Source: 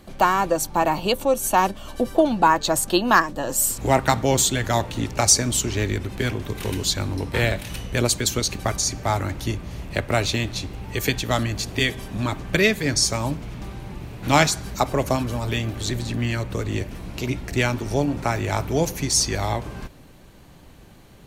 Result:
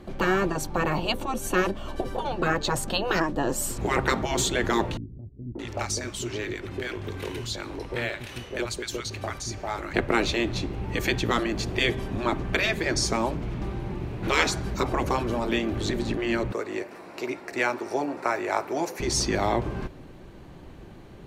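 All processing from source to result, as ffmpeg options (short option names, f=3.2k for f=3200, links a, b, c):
-filter_complex "[0:a]asettb=1/sr,asplit=3[a][b][c];[a]atrim=end=4.974[d];[b]atrim=start=4.97:end=9.94,asetpts=PTS-STARTPTS,afade=t=in:d=0.004:c=qsin,afade=t=out:st=4.966:d=0.004:c=qsin,lowshelf=f=380:g=-11,acompressor=threshold=-33dB:ratio=1.5:attack=3.2:release=140:knee=1:detection=peak,acrossover=split=250|860[e][f][g];[f]adelay=580[h];[g]adelay=620[i];[e][h][i]amix=inputs=3:normalize=0,atrim=end_sample=219177[j];[c]atrim=start=9.936[k];[d][j]acrossfade=d=0.004:c1=hsin:c2=qsin[l];[l][k]acrossfade=d=0.004:c1=qsin:c2=hsin,asettb=1/sr,asplit=3[m][n][o];[m]atrim=end=16.524[p];[n]atrim=start=16.52:end=19,asetpts=PTS-STARTPTS,afade=t=in:d=0.004:c=qsin,afade=t=out:st=2.476:d=0.004:c=qsin,highpass=530,equalizer=f=3.2k:t=o:w=0.46:g=-9,bandreject=f=6.4k:w=19[q];[o]atrim=start=18.996[r];[p][q]acrossfade=d=0.004:c1=hsin:c2=qsin[s];[s][r]acrossfade=d=0.004:c1=qsin:c2=hsin,lowpass=f=2.1k:p=1,afftfilt=real='re*lt(hypot(re,im),0.355)':imag='im*lt(hypot(re,im),0.355)':win_size=1024:overlap=0.75,equalizer=f=360:t=o:w=0.35:g=6,volume=2.5dB"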